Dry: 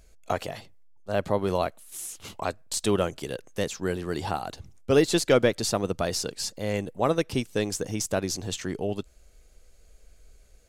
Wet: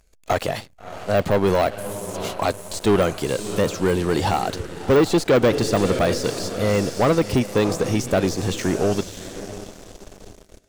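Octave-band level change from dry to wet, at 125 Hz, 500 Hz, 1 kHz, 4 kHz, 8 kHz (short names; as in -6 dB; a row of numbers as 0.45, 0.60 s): +8.5, +7.0, +7.5, +3.5, +1.0 dB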